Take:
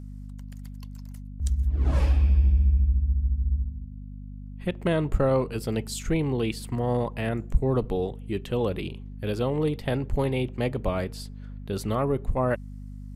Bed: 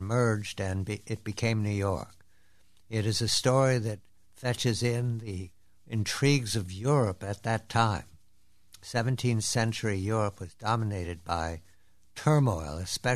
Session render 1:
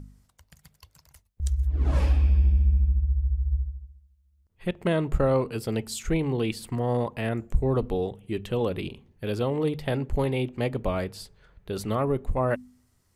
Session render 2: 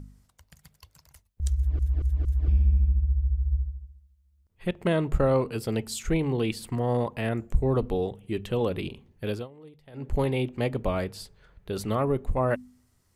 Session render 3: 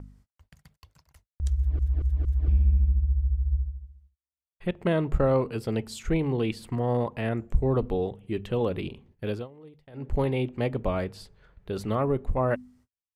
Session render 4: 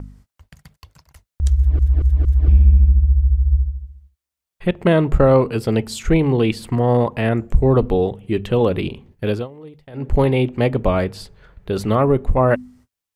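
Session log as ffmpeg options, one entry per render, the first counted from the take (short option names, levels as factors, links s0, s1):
-af "bandreject=f=50:t=h:w=4,bandreject=f=100:t=h:w=4,bandreject=f=150:t=h:w=4,bandreject=f=200:t=h:w=4,bandreject=f=250:t=h:w=4"
-filter_complex "[0:a]asplit=7[s0][s1][s2][s3][s4][s5][s6];[s0]atrim=end=1.792[s7];[s1]atrim=start=1.558:end=1.792[s8];[s2]atrim=start=1.558:end=1.792[s9];[s3]atrim=start=1.558:end=1.792[s10];[s4]atrim=start=2.478:end=9.48,asetpts=PTS-STARTPTS,afade=t=out:st=6.812:d=0.19:silence=0.0749894[s11];[s5]atrim=start=9.48:end=9.93,asetpts=PTS-STARTPTS,volume=0.075[s12];[s6]atrim=start=9.93,asetpts=PTS-STARTPTS,afade=t=in:d=0.19:silence=0.0749894[s13];[s7][s8]acrossfade=d=0.004:c1=hsin:c2=hsin[s14];[s14][s9]acrossfade=d=0.004:c1=hsin:c2=hsin[s15];[s15][s10]acrossfade=d=0.004:c1=hsin:c2=hsin[s16];[s11][s12][s13]concat=n=3:v=0:a=1[s17];[s16][s17]acrossfade=d=0.004:c1=hsin:c2=hsin"
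-af "agate=range=0.00708:threshold=0.00141:ratio=16:detection=peak,highshelf=f=5000:g=-10"
-af "volume=3.16,alimiter=limit=0.708:level=0:latency=1"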